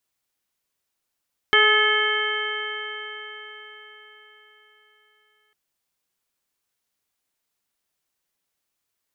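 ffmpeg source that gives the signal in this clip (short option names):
-f lavfi -i "aevalsrc='0.0841*pow(10,-3*t/4.6)*sin(2*PI*423.47*t)+0.0376*pow(10,-3*t/4.6)*sin(2*PI*849.71*t)+0.0944*pow(10,-3*t/4.6)*sin(2*PI*1281.5*t)+0.141*pow(10,-3*t/4.6)*sin(2*PI*1721.52*t)+0.106*pow(10,-3*t/4.6)*sin(2*PI*2172.38*t)+0.0133*pow(10,-3*t/4.6)*sin(2*PI*2636.59*t)+0.126*pow(10,-3*t/4.6)*sin(2*PI*3116.51*t)':d=4:s=44100"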